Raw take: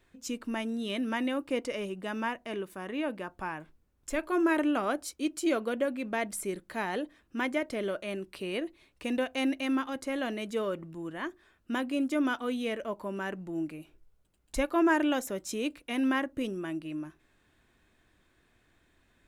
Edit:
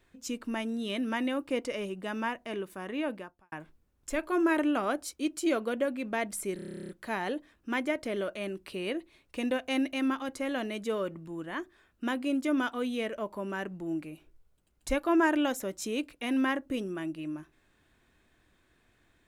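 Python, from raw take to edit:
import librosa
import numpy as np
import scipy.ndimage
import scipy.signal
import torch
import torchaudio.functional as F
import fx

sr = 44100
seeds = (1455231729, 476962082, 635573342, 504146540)

y = fx.edit(x, sr, fx.fade_out_span(start_s=3.14, length_s=0.38, curve='qua'),
    fx.stutter(start_s=6.56, slice_s=0.03, count=12), tone=tone)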